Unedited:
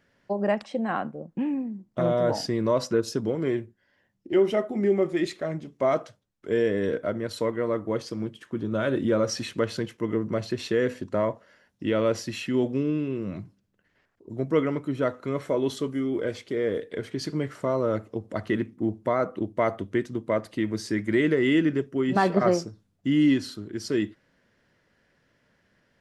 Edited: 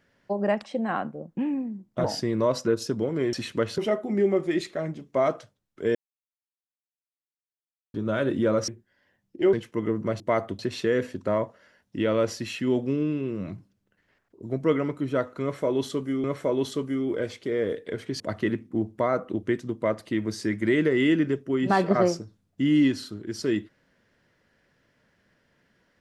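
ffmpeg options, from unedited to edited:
-filter_complex "[0:a]asplit=13[s0][s1][s2][s3][s4][s5][s6][s7][s8][s9][s10][s11][s12];[s0]atrim=end=2.042[s13];[s1]atrim=start=2.298:end=3.592[s14];[s2]atrim=start=9.338:end=9.792[s15];[s3]atrim=start=4.438:end=6.61,asetpts=PTS-STARTPTS,afade=t=out:st=2.168:d=0.004:c=hsin[s16];[s4]atrim=start=6.61:end=8.6,asetpts=PTS-STARTPTS,volume=0[s17];[s5]atrim=start=8.6:end=9.342,asetpts=PTS-STARTPTS,afade=t=in:d=0.004:c=hsin[s18];[s6]atrim=start=3.588:end=4.442[s19];[s7]atrim=start=9.788:end=10.462[s20];[s8]atrim=start=19.498:end=19.892[s21];[s9]atrim=start=10.458:end=16.112[s22];[s10]atrim=start=15.288:end=17.252[s23];[s11]atrim=start=18.268:end=19.502[s24];[s12]atrim=start=19.888[s25];[s13][s14]acrossfade=d=0.004:c1=hsin:c2=hsin[s26];[s26][s15]acrossfade=d=0.004:c1=hsin:c2=hsin[s27];[s16][s17][s18]concat=n=3:v=0:a=1[s28];[s27][s28]acrossfade=d=0.004:c1=hsin:c2=hsin[s29];[s29][s19]acrossfade=d=0.004:c1=hsin:c2=hsin[s30];[s30][s20]acrossfade=d=0.004:c1=hsin:c2=hsin[s31];[s31][s21]acrossfade=d=0.004:c1=hsin:c2=hsin[s32];[s32][s22]acrossfade=d=0.004:c1=hsin:c2=hsin[s33];[s33][s23]acrossfade=d=0.004:c1=hsin:c2=hsin[s34];[s34][s24]acrossfade=d=0.004:c1=hsin:c2=hsin[s35];[s35][s25]acrossfade=d=0.004:c1=hsin:c2=hsin"

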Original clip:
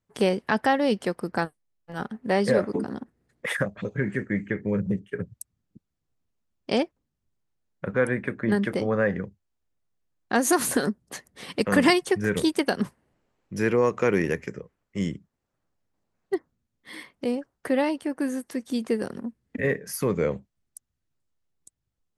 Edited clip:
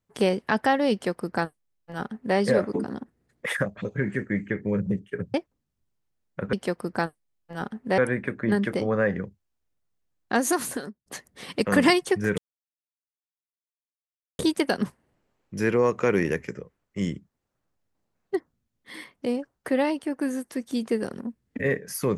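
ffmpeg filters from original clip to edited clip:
-filter_complex "[0:a]asplit=6[s0][s1][s2][s3][s4][s5];[s0]atrim=end=5.342[s6];[s1]atrim=start=6.788:end=7.982[s7];[s2]atrim=start=0.918:end=2.372[s8];[s3]atrim=start=7.978:end=11.06,asetpts=PTS-STARTPTS,afade=t=out:st=2.342:d=0.74[s9];[s4]atrim=start=11.06:end=12.38,asetpts=PTS-STARTPTS,afade=t=in:d=0.004:c=hsin,afade=t=out:st=1.316:d=0.004:c=hsin,apad=pad_dur=2.01[s10];[s5]atrim=start=12.38,asetpts=PTS-STARTPTS,afade=t=in:d=0.004:c=hsin[s11];[s6][s7]acrossfade=d=0.004:c1=hsin:c2=hsin[s12];[s12][s8]acrossfade=d=0.004:c1=hsin:c2=hsin[s13];[s9][s10][s11]concat=n=3:v=0:a=1[s14];[s13][s14]acrossfade=d=0.004:c1=hsin:c2=hsin"

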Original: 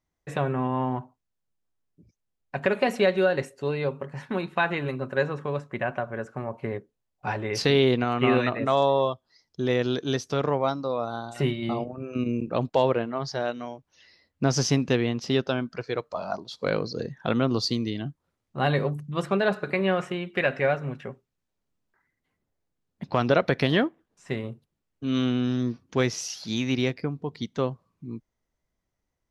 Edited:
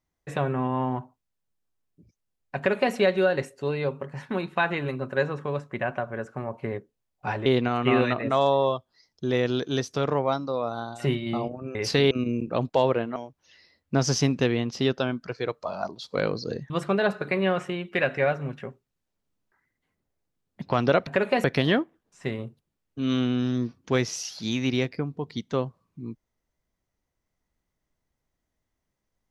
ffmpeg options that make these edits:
-filter_complex "[0:a]asplit=8[s0][s1][s2][s3][s4][s5][s6][s7];[s0]atrim=end=7.462[s8];[s1]atrim=start=7.818:end=12.112[s9];[s2]atrim=start=7.458:end=7.822[s10];[s3]atrim=start=12.108:end=13.162[s11];[s4]atrim=start=13.648:end=17.192[s12];[s5]atrim=start=19.118:end=23.492[s13];[s6]atrim=start=2.568:end=2.942[s14];[s7]atrim=start=23.488[s15];[s8][s9]acrossfade=d=0.004:c1=hsin:c2=hsin[s16];[s16][s10]acrossfade=d=0.004:c1=hsin:c2=hsin[s17];[s17][s11]acrossfade=d=0.004:c1=hsin:c2=hsin[s18];[s18][s12]acrossfade=d=0.004:c1=hsin:c2=hsin[s19];[s19][s13]acrossfade=d=0.004:c1=hsin:c2=hsin[s20];[s20][s14]acrossfade=d=0.004:c1=hsin:c2=hsin[s21];[s21][s15]acrossfade=d=0.004:c1=hsin:c2=hsin"

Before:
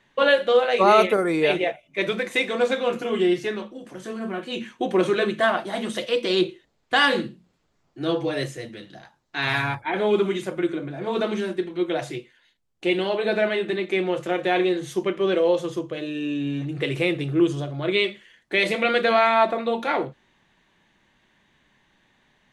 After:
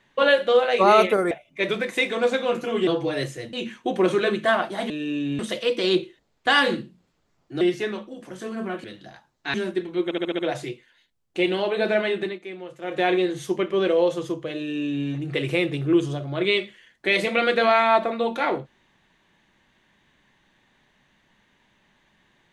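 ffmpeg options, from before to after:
-filter_complex "[0:a]asplit=16[s0][s1][s2][s3][s4][s5][s6][s7][s8][s9][s10][s11][s12][s13][s14][s15];[s0]atrim=end=1.312[s16];[s1]atrim=start=1.688:end=3.252[s17];[s2]atrim=start=8.068:end=8.732[s18];[s3]atrim=start=4.478:end=5.852[s19];[s4]atrim=start=16.048:end=16.542[s20];[s5]atrim=start=5.848:end=8.072[s21];[s6]atrim=start=3.248:end=4.482[s22];[s7]atrim=start=8.728:end=9.432[s23];[s8]atrim=start=11.358:end=11.932[s24];[s9]atrim=start=11.858:end=11.932[s25];[s10]atrim=start=11.858:end=11.932[s26];[s11]atrim=start=11.858:end=11.932[s27];[s12]atrim=start=11.858:end=11.932[s28];[s13]atrim=start=11.858:end=13.86,asetpts=PTS-STARTPTS,afade=t=out:st=1.822:d=0.18:silence=0.223872[s29];[s14]atrim=start=13.86:end=14.28,asetpts=PTS-STARTPTS,volume=0.224[s30];[s15]atrim=start=14.28,asetpts=PTS-STARTPTS,afade=t=in:d=0.18:silence=0.223872[s31];[s16][s17]acrossfade=d=0.004:c1=hsin:c2=hsin[s32];[s32][s18]acrossfade=d=0.004:c1=hsin:c2=hsin[s33];[s33][s19]acrossfade=d=0.004:c1=hsin:c2=hsin[s34];[s34][s20]acrossfade=d=0.004:c1=hsin:c2=hsin[s35];[s35][s21]acrossfade=d=0.004:c1=hsin:c2=hsin[s36];[s36][s22]acrossfade=d=0.004:c1=hsin:c2=hsin[s37];[s37][s23]acrossfade=d=0.004:c1=hsin:c2=hsin[s38];[s38][s24]acrossfade=d=0.004:c1=hsin:c2=hsin[s39];[s39][s25]acrossfade=d=0.004:c1=hsin:c2=hsin[s40];[s40][s26]acrossfade=d=0.004:c1=hsin:c2=hsin[s41];[s41][s27]acrossfade=d=0.004:c1=hsin:c2=hsin[s42];[s42][s28]acrossfade=d=0.004:c1=hsin:c2=hsin[s43];[s29][s30][s31]concat=n=3:v=0:a=1[s44];[s43][s44]acrossfade=d=0.004:c1=hsin:c2=hsin"

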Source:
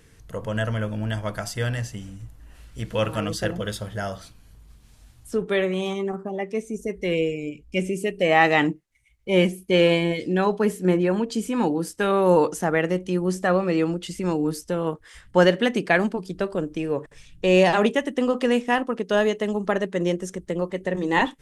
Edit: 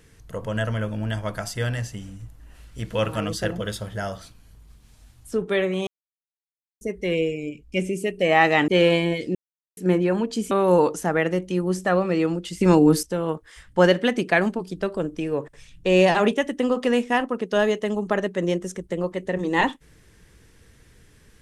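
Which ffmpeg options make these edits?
-filter_complex "[0:a]asplit=9[s0][s1][s2][s3][s4][s5][s6][s7][s8];[s0]atrim=end=5.87,asetpts=PTS-STARTPTS,afade=t=out:st=5.866:d=0.004:c=hsin[s9];[s1]atrim=start=5.87:end=6.81,asetpts=PTS-STARTPTS,volume=0[s10];[s2]atrim=start=6.81:end=8.682,asetpts=PTS-STARTPTS,afade=t=in:d=0.004:c=hsin[s11];[s3]atrim=start=9.668:end=10.34,asetpts=PTS-STARTPTS,afade=t=out:st=0.668:d=0.004:c=hsin[s12];[s4]atrim=start=10.34:end=10.76,asetpts=PTS-STARTPTS,volume=0[s13];[s5]atrim=start=10.76:end=11.502,asetpts=PTS-STARTPTS,afade=t=in:d=0.004:c=hsin[s14];[s6]atrim=start=12.088:end=14.192[s15];[s7]atrim=start=14.188:end=14.612,asetpts=PTS-STARTPTS,volume=2.66[s16];[s8]atrim=start=14.608[s17];[s9][s10][s11]concat=n=3:v=0:a=1[s18];[s12][s13][s14]concat=n=3:v=0:a=1[s19];[s18][s19]acrossfade=d=0.004:c1=hsin:c2=hsin[s20];[s20][s15]acrossfade=d=0.004:c1=hsin:c2=hsin[s21];[s21][s16]acrossfade=d=0.004:c1=hsin:c2=hsin[s22];[s22][s17]acrossfade=d=0.004:c1=hsin:c2=hsin"

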